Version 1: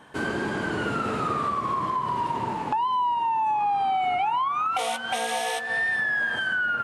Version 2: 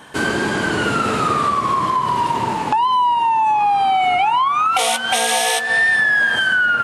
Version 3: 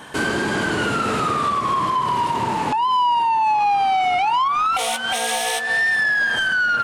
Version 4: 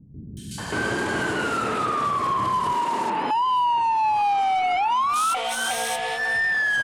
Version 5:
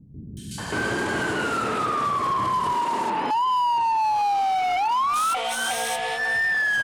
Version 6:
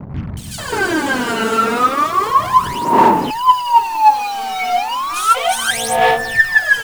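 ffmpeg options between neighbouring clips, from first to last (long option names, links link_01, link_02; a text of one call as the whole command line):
ffmpeg -i in.wav -af "highshelf=frequency=2700:gain=8.5,volume=7.5dB" out.wav
ffmpeg -i in.wav -af "alimiter=limit=-13dB:level=0:latency=1:release=361,asoftclip=type=tanh:threshold=-16dB,volume=2.5dB" out.wav
ffmpeg -i in.wav -filter_complex "[0:a]alimiter=limit=-23.5dB:level=0:latency=1:release=127,acrossover=split=190|3500[link_01][link_02][link_03];[link_03]adelay=370[link_04];[link_02]adelay=580[link_05];[link_01][link_05][link_04]amix=inputs=3:normalize=0,volume=5.5dB" out.wav
ffmpeg -i in.wav -af "asoftclip=type=hard:threshold=-19dB" out.wav
ffmpeg -i in.wav -af "aphaser=in_gain=1:out_gain=1:delay=4.5:decay=0.8:speed=0.33:type=sinusoidal,acrusher=bits=5:mix=0:aa=0.5,volume=4dB" out.wav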